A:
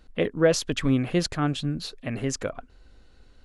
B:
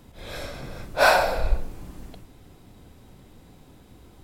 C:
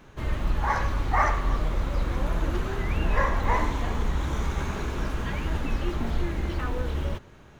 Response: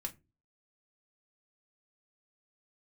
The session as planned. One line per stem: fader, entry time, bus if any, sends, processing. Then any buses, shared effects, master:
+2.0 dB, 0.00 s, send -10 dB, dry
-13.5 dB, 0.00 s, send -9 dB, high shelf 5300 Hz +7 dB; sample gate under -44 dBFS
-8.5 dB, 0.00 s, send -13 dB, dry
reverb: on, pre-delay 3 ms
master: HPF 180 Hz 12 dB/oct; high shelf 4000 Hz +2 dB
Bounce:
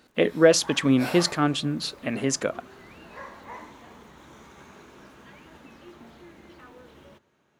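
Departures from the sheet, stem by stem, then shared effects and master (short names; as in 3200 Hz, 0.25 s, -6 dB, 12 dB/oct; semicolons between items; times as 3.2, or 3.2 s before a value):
stem B -13.5 dB -> -20.5 dB; stem C -8.5 dB -> -16.0 dB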